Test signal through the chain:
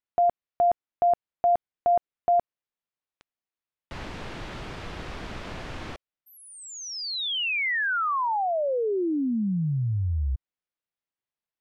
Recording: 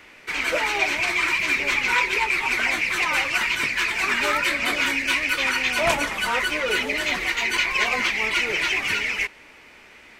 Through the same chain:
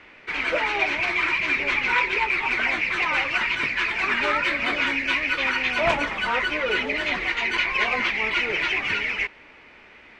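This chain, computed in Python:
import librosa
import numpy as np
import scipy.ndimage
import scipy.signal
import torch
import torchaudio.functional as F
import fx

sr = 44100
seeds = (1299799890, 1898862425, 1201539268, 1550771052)

y = scipy.signal.sosfilt(scipy.signal.butter(2, 3300.0, 'lowpass', fs=sr, output='sos'), x)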